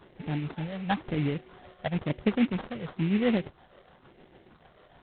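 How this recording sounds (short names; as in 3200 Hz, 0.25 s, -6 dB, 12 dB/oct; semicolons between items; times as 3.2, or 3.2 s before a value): tremolo triangle 6.7 Hz, depth 55%; phasing stages 12, 0.99 Hz, lowest notch 280–1600 Hz; aliases and images of a low sample rate 2500 Hz, jitter 20%; G.726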